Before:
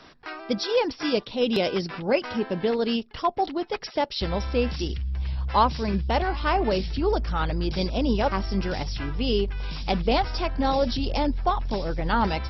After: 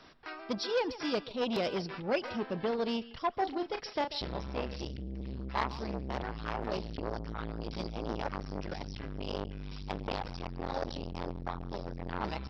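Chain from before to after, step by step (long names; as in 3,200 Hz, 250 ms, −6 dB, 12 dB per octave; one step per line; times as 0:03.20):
0:03.33–0:04.42: double-tracking delay 34 ms −8 dB
far-end echo of a speakerphone 140 ms, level −15 dB
saturating transformer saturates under 1,300 Hz
level −6.5 dB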